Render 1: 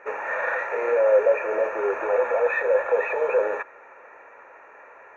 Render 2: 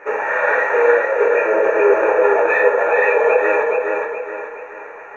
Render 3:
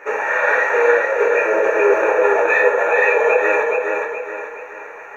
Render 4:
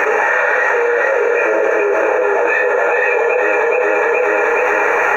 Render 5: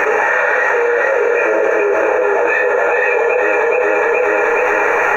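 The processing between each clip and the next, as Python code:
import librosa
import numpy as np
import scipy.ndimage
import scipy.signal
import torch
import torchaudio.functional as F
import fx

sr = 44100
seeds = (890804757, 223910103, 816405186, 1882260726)

y1 = fx.over_compress(x, sr, threshold_db=-23.0, ratio=-1.0)
y1 = fx.echo_feedback(y1, sr, ms=422, feedback_pct=41, wet_db=-3.5)
y1 = fx.room_shoebox(y1, sr, seeds[0], volume_m3=40.0, walls='mixed', distance_m=0.59)
y1 = y1 * 10.0 ** (4.0 / 20.0)
y2 = fx.high_shelf(y1, sr, hz=3100.0, db=11.5)
y2 = y2 * 10.0 ** (-1.5 / 20.0)
y3 = fx.env_flatten(y2, sr, amount_pct=100)
y3 = y3 * 10.0 ** (-3.5 / 20.0)
y4 = fx.low_shelf(y3, sr, hz=130.0, db=7.5)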